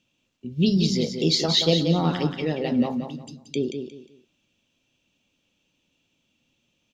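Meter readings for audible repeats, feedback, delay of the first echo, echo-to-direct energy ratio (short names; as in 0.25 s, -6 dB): 3, 27%, 0.179 s, -6.5 dB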